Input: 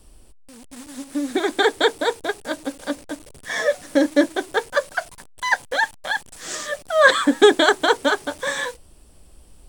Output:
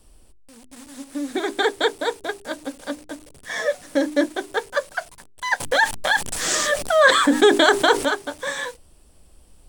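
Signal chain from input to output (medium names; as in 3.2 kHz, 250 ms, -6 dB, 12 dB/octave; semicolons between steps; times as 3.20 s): hum notches 50/100/150/200/250/300/350/400 Hz; 5.60–8.05 s: level flattener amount 50%; trim -2.5 dB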